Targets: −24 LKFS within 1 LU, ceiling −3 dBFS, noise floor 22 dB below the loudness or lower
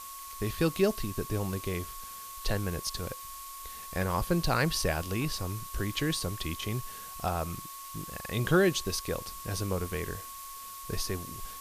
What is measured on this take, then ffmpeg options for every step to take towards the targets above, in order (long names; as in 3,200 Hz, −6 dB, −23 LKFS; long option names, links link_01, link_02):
interfering tone 1,100 Hz; level of the tone −44 dBFS; background noise floor −44 dBFS; target noise floor −55 dBFS; integrated loudness −32.5 LKFS; sample peak −13.5 dBFS; target loudness −24.0 LKFS
→ -af "bandreject=frequency=1100:width=30"
-af "afftdn=noise_reduction=11:noise_floor=-44"
-af "volume=8.5dB"